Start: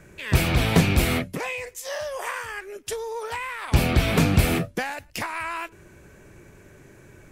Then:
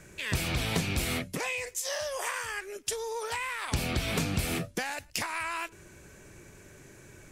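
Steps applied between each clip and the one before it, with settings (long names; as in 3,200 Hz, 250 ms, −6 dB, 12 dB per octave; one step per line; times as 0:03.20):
parametric band 7,000 Hz +8.5 dB 2.3 octaves
downward compressor 3 to 1, threshold −25 dBFS, peak gain reduction 10.5 dB
level −3.5 dB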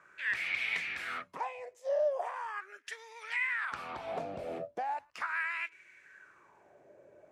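LFO wah 0.39 Hz 580–2,200 Hz, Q 5.6
level +7.5 dB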